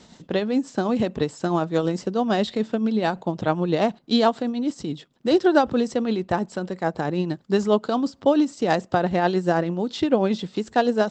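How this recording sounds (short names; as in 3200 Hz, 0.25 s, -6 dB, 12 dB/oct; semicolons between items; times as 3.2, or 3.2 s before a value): tremolo triangle 9.2 Hz, depth 50%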